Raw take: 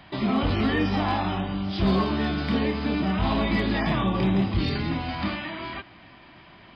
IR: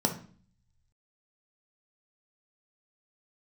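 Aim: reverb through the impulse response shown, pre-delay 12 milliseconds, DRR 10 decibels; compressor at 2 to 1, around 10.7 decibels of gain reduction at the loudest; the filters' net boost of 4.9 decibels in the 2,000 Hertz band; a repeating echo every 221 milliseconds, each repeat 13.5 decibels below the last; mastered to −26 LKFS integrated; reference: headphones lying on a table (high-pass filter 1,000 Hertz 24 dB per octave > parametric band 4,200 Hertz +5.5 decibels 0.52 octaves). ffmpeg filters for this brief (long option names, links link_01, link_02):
-filter_complex "[0:a]equalizer=frequency=2000:width_type=o:gain=5.5,acompressor=threshold=-39dB:ratio=2,aecho=1:1:221|442:0.211|0.0444,asplit=2[link_01][link_02];[1:a]atrim=start_sample=2205,adelay=12[link_03];[link_02][link_03]afir=irnorm=-1:irlink=0,volume=-19dB[link_04];[link_01][link_04]amix=inputs=2:normalize=0,highpass=frequency=1000:width=0.5412,highpass=frequency=1000:width=1.3066,equalizer=frequency=4200:width_type=o:width=0.52:gain=5.5,volume=12dB"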